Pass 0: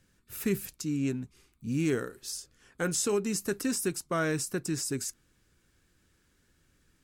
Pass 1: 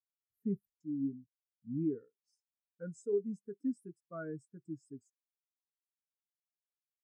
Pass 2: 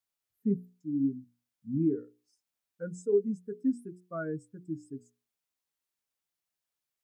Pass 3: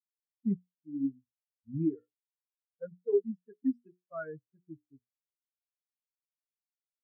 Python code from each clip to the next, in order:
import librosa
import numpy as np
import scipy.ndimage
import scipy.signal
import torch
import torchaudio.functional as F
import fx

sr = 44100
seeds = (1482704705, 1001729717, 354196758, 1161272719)

y1 = fx.peak_eq(x, sr, hz=3000.0, db=-6.5, octaves=0.57)
y1 = fx.notch(y1, sr, hz=370.0, q=12.0)
y1 = fx.spectral_expand(y1, sr, expansion=2.5)
y1 = F.gain(torch.from_numpy(y1), -4.5).numpy()
y2 = fx.hum_notches(y1, sr, base_hz=60, count=8)
y2 = F.gain(torch.from_numpy(y2), 7.0).numpy()
y3 = fx.bin_expand(y2, sr, power=2.0)
y3 = fx.env_lowpass(y3, sr, base_hz=490.0, full_db=-28.0)
y3 = scipy.signal.sosfilt(scipy.signal.butter(4, 2800.0, 'lowpass', fs=sr, output='sos'), y3)